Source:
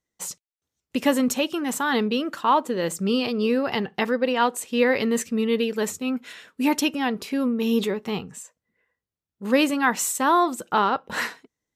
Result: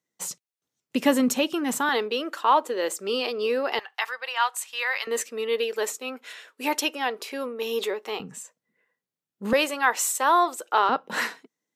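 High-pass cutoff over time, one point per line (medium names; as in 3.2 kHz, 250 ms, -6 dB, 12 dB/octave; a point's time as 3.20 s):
high-pass 24 dB/octave
120 Hz
from 1.89 s 350 Hz
from 3.79 s 880 Hz
from 5.07 s 390 Hz
from 8.20 s 140 Hz
from 9.53 s 410 Hz
from 10.89 s 170 Hz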